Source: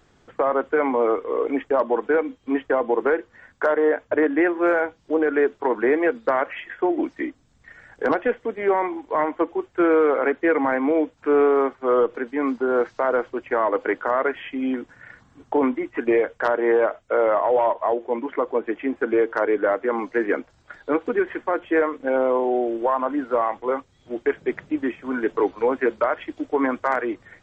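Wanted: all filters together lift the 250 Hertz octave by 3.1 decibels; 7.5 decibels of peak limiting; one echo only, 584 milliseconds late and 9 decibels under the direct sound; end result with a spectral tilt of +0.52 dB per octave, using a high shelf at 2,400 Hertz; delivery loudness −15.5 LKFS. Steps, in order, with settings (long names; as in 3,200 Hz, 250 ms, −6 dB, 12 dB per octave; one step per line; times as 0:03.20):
parametric band 250 Hz +4 dB
high-shelf EQ 2,400 Hz +4.5 dB
brickwall limiter −15 dBFS
single-tap delay 584 ms −9 dB
level +9 dB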